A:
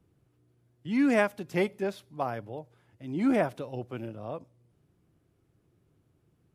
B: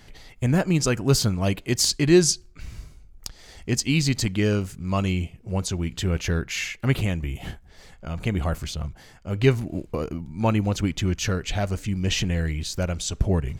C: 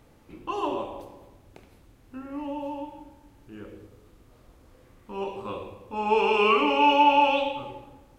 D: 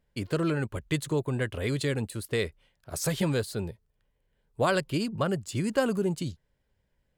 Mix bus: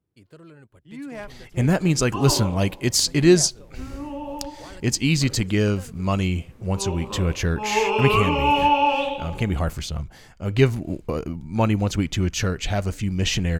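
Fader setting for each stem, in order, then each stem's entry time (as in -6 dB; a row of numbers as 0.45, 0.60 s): -11.5, +1.5, +0.5, -19.0 dB; 0.00, 1.15, 1.65, 0.00 s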